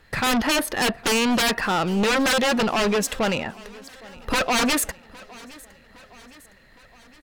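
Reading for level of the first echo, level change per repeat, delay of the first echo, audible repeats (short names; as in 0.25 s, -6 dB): -22.0 dB, -5.0 dB, 0.812 s, 3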